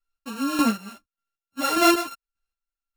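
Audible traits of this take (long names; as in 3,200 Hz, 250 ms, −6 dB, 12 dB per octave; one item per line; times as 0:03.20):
a buzz of ramps at a fixed pitch in blocks of 32 samples
chopped level 1.7 Hz, depth 65%, duty 30%
a shimmering, thickened sound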